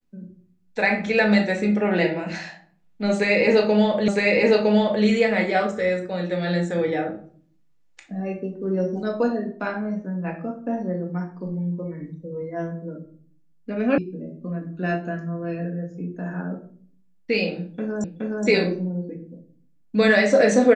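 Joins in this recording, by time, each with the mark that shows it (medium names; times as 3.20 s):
4.08 s: repeat of the last 0.96 s
13.98 s: sound stops dead
18.04 s: repeat of the last 0.42 s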